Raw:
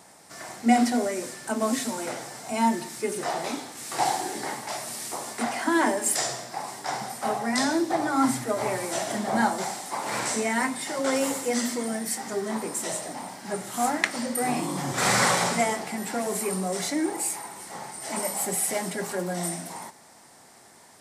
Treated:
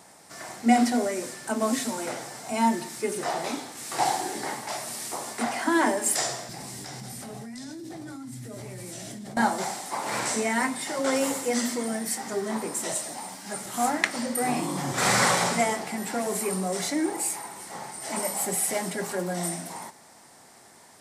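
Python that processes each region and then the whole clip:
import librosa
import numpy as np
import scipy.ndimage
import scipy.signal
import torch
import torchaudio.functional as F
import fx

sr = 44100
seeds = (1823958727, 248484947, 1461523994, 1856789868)

y = fx.chain(x, sr, fx.tone_stack(knobs='10-0-1'),
    fx.doubler(ms=16.0, db=-13.0),
    fx.env_flatten(amount_pct=100), at=(6.49, 9.37))
y = fx.chain(y, sr, fx.high_shelf(hz=3200.0, db=8.0),
    fx.ensemble(), at=(12.94, 13.66))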